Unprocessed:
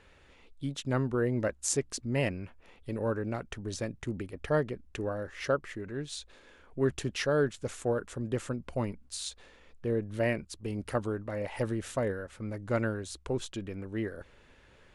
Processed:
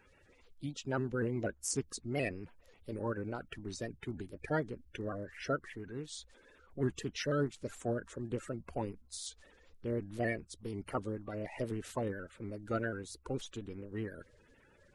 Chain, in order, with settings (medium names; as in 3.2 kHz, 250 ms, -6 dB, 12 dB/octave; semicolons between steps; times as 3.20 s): coarse spectral quantiser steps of 30 dB; vibrato with a chosen wave saw up 4.1 Hz, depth 100 cents; trim -5 dB